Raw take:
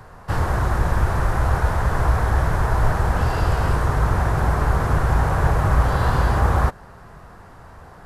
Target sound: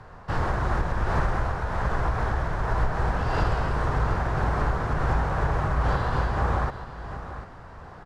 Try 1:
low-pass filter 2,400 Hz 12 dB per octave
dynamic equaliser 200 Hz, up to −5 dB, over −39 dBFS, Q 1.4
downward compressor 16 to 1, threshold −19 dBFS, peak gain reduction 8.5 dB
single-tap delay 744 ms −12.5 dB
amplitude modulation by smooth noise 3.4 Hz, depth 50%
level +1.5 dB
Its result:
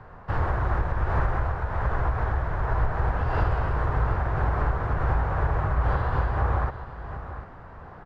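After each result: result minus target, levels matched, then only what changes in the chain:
4,000 Hz band −8.0 dB; 250 Hz band −3.5 dB
change: low-pass filter 5,300 Hz 12 dB per octave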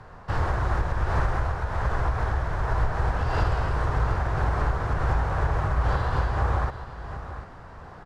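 250 Hz band −3.5 dB
change: dynamic equaliser 82 Hz, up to −5 dB, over −39 dBFS, Q 1.4

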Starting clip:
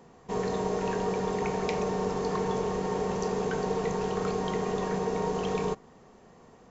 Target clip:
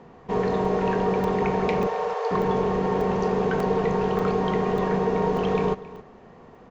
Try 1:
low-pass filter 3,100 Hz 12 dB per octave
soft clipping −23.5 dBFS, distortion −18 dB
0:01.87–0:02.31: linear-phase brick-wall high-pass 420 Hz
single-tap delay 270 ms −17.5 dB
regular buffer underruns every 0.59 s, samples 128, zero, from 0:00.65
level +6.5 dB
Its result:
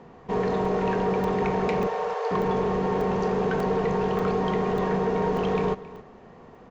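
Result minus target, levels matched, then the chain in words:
soft clipping: distortion +17 dB
low-pass filter 3,100 Hz 12 dB per octave
soft clipping −13.5 dBFS, distortion −35 dB
0:01.87–0:02.31: linear-phase brick-wall high-pass 420 Hz
single-tap delay 270 ms −17.5 dB
regular buffer underruns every 0.59 s, samples 128, zero, from 0:00.65
level +6.5 dB

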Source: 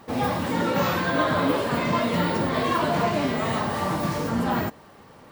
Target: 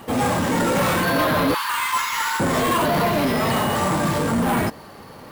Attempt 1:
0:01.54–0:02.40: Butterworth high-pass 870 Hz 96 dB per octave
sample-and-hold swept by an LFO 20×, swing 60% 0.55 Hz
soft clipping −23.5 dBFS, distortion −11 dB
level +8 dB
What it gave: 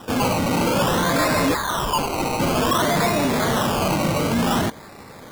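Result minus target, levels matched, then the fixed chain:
sample-and-hold swept by an LFO: distortion +13 dB
0:01.54–0:02.40: Butterworth high-pass 870 Hz 96 dB per octave
sample-and-hold swept by an LFO 4×, swing 60% 0.55 Hz
soft clipping −23.5 dBFS, distortion −11 dB
level +8 dB

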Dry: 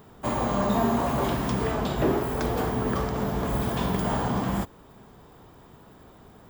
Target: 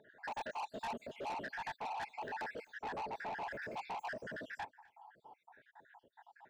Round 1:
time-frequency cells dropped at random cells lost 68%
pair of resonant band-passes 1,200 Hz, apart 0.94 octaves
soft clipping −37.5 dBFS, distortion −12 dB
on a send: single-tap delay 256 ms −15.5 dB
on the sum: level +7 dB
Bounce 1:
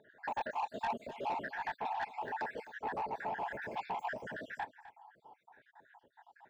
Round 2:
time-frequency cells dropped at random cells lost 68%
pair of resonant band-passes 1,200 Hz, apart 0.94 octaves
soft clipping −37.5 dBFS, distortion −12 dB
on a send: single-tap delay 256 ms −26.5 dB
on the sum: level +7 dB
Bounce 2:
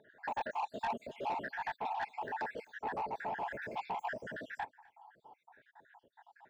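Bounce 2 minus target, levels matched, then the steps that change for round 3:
soft clipping: distortion −6 dB
change: soft clipping −45 dBFS, distortion −6 dB

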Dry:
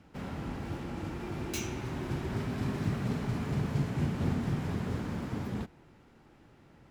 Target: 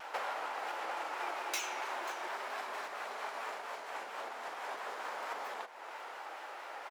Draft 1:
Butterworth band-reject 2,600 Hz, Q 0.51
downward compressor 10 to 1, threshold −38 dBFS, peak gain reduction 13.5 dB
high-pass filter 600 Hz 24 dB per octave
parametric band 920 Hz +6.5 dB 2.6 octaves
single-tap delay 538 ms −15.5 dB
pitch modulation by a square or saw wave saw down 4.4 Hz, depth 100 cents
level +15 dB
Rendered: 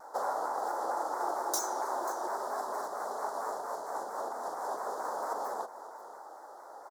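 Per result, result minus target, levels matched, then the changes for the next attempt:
2,000 Hz band −11.0 dB; downward compressor: peak gain reduction −8 dB
remove: Butterworth band-reject 2,600 Hz, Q 0.51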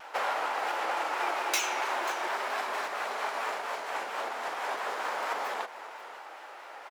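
downward compressor: peak gain reduction −8 dB
change: downward compressor 10 to 1, threshold −47 dBFS, peak gain reduction 22 dB

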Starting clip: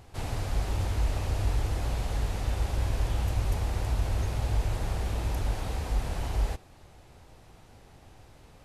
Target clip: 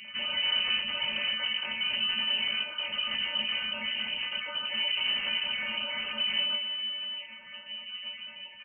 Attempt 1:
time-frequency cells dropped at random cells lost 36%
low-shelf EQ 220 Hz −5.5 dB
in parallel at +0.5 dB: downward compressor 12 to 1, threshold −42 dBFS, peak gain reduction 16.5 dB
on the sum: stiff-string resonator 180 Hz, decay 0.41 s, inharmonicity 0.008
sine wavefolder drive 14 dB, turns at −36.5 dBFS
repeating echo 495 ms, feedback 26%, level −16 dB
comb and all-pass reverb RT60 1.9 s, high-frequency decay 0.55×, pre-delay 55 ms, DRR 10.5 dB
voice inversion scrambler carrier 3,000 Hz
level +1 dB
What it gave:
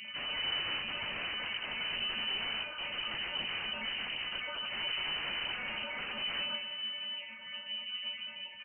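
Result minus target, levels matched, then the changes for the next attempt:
sine wavefolder: distortion +14 dB
change: sine wavefolder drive 14 dB, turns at −30 dBFS

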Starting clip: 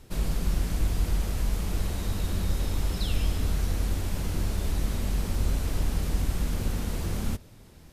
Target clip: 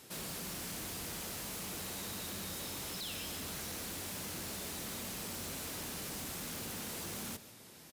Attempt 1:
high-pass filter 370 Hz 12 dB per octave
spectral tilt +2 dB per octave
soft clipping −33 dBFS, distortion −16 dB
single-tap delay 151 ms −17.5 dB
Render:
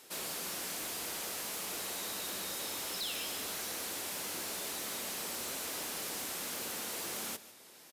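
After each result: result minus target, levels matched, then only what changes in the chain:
125 Hz band −12.5 dB; soft clipping: distortion −7 dB
change: high-pass filter 140 Hz 12 dB per octave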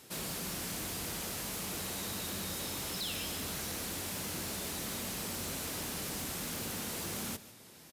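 soft clipping: distortion −6 dB
change: soft clipping −39.5 dBFS, distortion −9 dB

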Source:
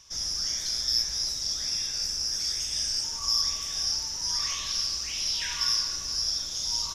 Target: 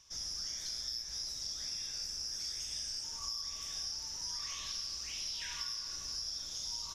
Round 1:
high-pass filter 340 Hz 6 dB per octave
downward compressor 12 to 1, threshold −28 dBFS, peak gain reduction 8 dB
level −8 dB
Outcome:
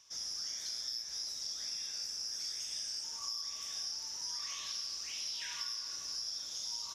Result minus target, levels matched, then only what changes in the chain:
250 Hz band −4.5 dB
remove: high-pass filter 340 Hz 6 dB per octave

